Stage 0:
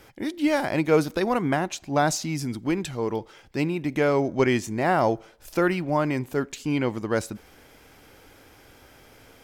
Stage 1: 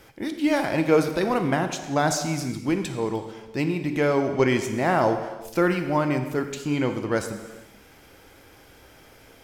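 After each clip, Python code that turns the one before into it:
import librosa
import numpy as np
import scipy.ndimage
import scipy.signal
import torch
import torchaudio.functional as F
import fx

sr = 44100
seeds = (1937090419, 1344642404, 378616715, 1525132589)

y = fx.rev_gated(x, sr, seeds[0], gate_ms=470, shape='falling', drr_db=6.5)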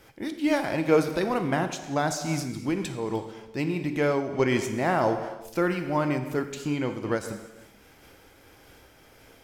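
y = fx.am_noise(x, sr, seeds[1], hz=5.7, depth_pct=60)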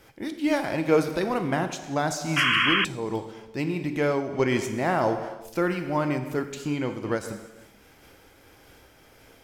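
y = fx.spec_paint(x, sr, seeds[2], shape='noise', start_s=2.36, length_s=0.49, low_hz=1000.0, high_hz=3300.0, level_db=-22.0)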